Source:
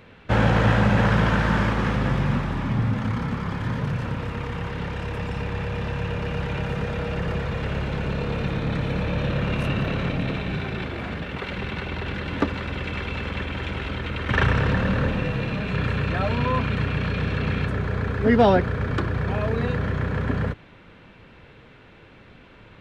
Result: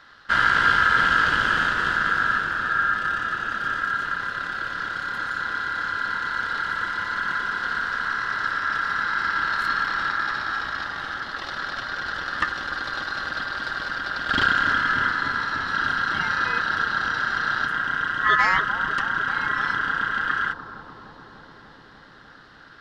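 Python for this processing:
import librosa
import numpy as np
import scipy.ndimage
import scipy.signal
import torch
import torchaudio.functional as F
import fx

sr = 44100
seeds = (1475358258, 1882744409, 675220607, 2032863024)

p1 = fx.peak_eq(x, sr, hz=850.0, db=-14.5, octaves=1.1)
p2 = p1 * np.sin(2.0 * np.pi * 1500.0 * np.arange(len(p1)) / sr)
p3 = p2 + fx.echo_bbd(p2, sr, ms=295, stages=2048, feedback_pct=82, wet_db=-7.5, dry=0)
y = p3 * 10.0 ** (3.5 / 20.0)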